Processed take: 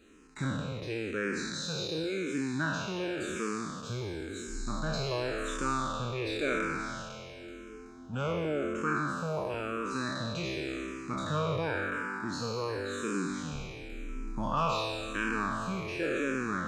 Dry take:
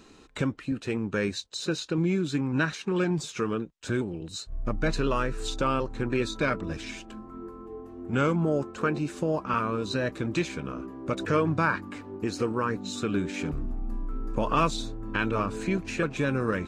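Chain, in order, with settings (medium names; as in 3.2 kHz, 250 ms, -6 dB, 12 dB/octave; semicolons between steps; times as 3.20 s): spectral sustain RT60 2.79 s; barber-pole phaser -0.93 Hz; trim -6.5 dB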